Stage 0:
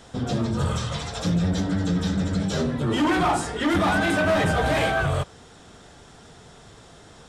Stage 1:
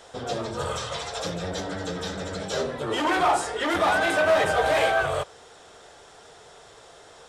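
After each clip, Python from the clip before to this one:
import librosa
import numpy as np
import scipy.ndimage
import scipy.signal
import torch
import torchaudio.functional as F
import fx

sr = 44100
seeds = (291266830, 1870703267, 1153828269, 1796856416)

y = fx.low_shelf_res(x, sr, hz=330.0, db=-11.0, q=1.5)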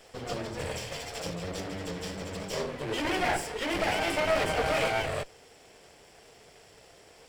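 y = fx.lower_of_two(x, sr, delay_ms=0.38)
y = y * librosa.db_to_amplitude(-4.0)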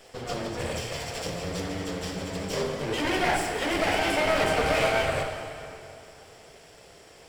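y = fx.rev_plate(x, sr, seeds[0], rt60_s=2.7, hf_ratio=0.8, predelay_ms=0, drr_db=3.5)
y = y * librosa.db_to_amplitude(2.0)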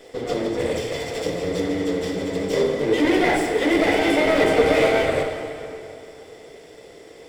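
y = fx.small_body(x, sr, hz=(310.0, 440.0, 2000.0, 3500.0), ring_ms=25, db=12)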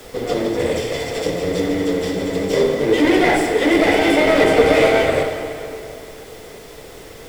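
y = fx.dmg_noise_colour(x, sr, seeds[1], colour='pink', level_db=-46.0)
y = y * librosa.db_to_amplitude(4.0)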